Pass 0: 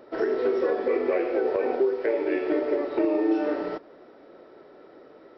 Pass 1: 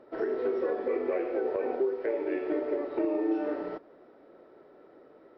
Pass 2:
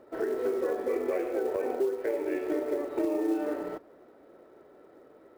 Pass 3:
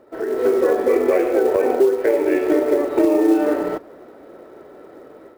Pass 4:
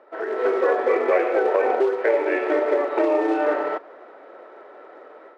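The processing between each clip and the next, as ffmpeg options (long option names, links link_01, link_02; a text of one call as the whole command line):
ffmpeg -i in.wav -af "lowpass=frequency=2100:poles=1,volume=-5dB" out.wav
ffmpeg -i in.wav -af "equalizer=frequency=74:width=2.3:gain=7,acrusher=bits=7:mode=log:mix=0:aa=0.000001" out.wav
ffmpeg -i in.wav -af "dynaudnorm=framelen=240:gausssize=3:maxgain=9dB,volume=4dB" out.wav
ffmpeg -i in.wav -af "highpass=690,lowpass=2600,volume=4.5dB" out.wav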